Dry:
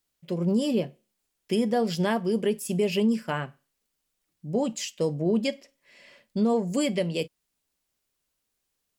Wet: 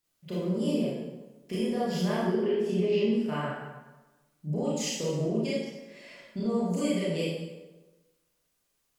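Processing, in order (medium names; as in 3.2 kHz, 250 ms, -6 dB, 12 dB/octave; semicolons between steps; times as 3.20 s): 2.16–3.13 s: FFT filter 130 Hz 0 dB, 320 Hz +13 dB, 600 Hz +5 dB, 4.1 kHz +6 dB, 9.9 kHz -18 dB; compression 4:1, threshold -31 dBFS, peak gain reduction 16.5 dB; reverberation RT60 1.2 s, pre-delay 23 ms, DRR -8.5 dB; trim -4.5 dB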